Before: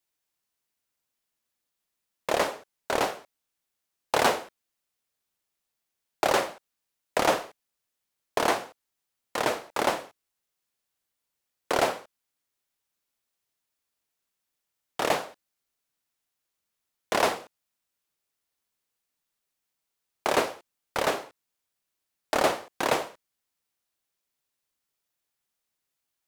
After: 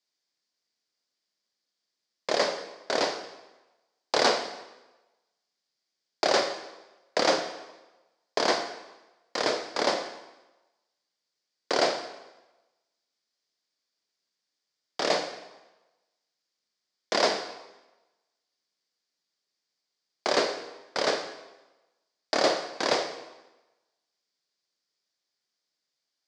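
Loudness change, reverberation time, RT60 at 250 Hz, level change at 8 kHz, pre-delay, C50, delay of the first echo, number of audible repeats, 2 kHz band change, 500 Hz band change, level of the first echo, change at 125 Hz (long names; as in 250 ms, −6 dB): 0.0 dB, 1.1 s, 1.0 s, 0.0 dB, 14 ms, 8.5 dB, no echo audible, no echo audible, −0.5 dB, +0.5 dB, no echo audible, −6.0 dB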